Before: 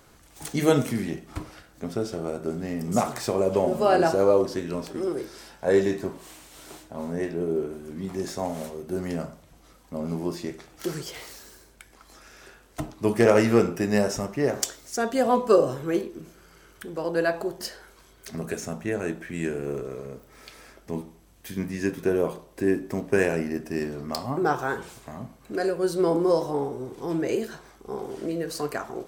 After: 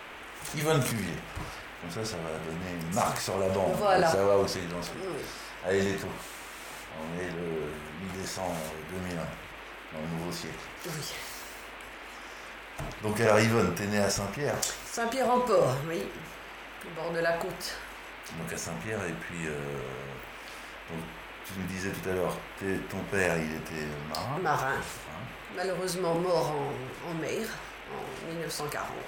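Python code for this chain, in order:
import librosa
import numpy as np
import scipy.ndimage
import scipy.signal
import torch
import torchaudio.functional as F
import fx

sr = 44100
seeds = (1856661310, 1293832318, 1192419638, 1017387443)

y = fx.peak_eq(x, sr, hz=310.0, db=-11.5, octaves=1.1)
y = fx.transient(y, sr, attack_db=-5, sustain_db=6)
y = fx.dmg_noise_band(y, sr, seeds[0], low_hz=230.0, high_hz=2700.0, level_db=-45.0)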